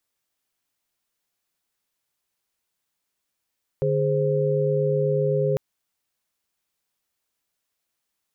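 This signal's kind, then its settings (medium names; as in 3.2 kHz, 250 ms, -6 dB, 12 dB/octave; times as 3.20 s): chord D3/G#4/C5 sine, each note -23.5 dBFS 1.75 s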